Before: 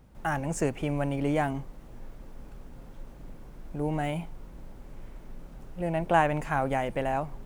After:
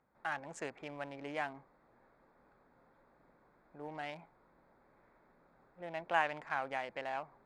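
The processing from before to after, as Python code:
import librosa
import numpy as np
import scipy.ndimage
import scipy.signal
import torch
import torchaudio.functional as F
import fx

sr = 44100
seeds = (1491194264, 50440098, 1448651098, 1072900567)

y = fx.wiener(x, sr, points=15)
y = scipy.signal.sosfilt(scipy.signal.butter(2, 2400.0, 'lowpass', fs=sr, output='sos'), y)
y = np.diff(y, prepend=0.0)
y = y * 10.0 ** (9.5 / 20.0)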